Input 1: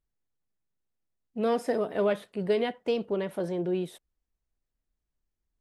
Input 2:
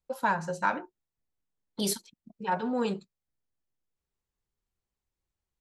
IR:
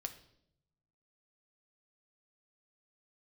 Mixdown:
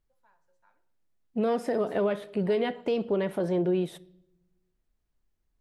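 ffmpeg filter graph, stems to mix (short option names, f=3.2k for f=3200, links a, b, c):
-filter_complex "[0:a]highshelf=f=4.1k:g=-6,volume=3dB,asplit=3[a][b][c];[b]volume=-5.5dB[d];[1:a]highpass=380,acrossover=split=2700[e][f];[f]acompressor=threshold=-41dB:ratio=4:attack=1:release=60[g];[e][g]amix=inputs=2:normalize=0,volume=-19.5dB,asplit=2[h][i];[i]volume=-19dB[j];[c]apad=whole_len=247192[k];[h][k]sidechaingate=range=-33dB:threshold=-38dB:ratio=16:detection=peak[l];[2:a]atrim=start_sample=2205[m];[d][j]amix=inputs=2:normalize=0[n];[n][m]afir=irnorm=-1:irlink=0[o];[a][l][o]amix=inputs=3:normalize=0,alimiter=limit=-18dB:level=0:latency=1:release=197"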